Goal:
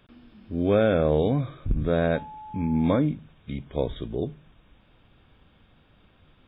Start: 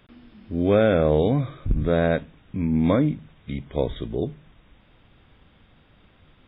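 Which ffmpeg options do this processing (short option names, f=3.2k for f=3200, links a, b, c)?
-filter_complex "[0:a]bandreject=f=2k:w=11,asettb=1/sr,asplit=3[a][b][c];[a]atrim=end=2.154[d];[b]atrim=start=2.15:end=2.98,asetpts=PTS-STARTPTS,afade=t=in:d=0.004:c=qsin,afade=t=out:st=0.826:d=0.004:c=qsin,aeval=exprs='val(0)+0.0158*sin(2*PI*860*n/s)':c=same[e];[c]atrim=start=2.976[f];[d][e]acrossfade=d=0.004:c1=hsin:c2=qsin[g];[g][f]acrossfade=d=0.004:c1=qsin:c2=hsin,volume=-2.5dB"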